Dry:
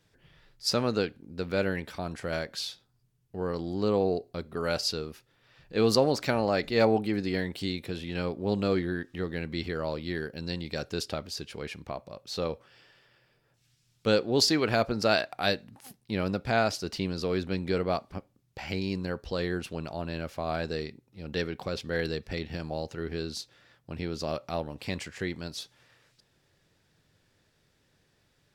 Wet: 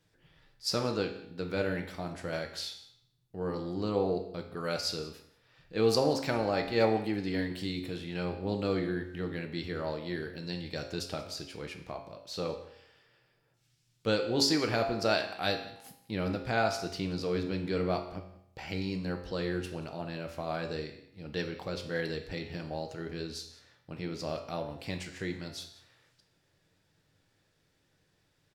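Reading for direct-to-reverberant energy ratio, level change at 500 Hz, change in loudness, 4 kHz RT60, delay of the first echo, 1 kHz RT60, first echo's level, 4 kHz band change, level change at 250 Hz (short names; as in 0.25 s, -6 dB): 4.5 dB, -3.0 dB, -3.0 dB, 0.65 s, 0.183 s, 0.70 s, -20.0 dB, -3.0 dB, -3.0 dB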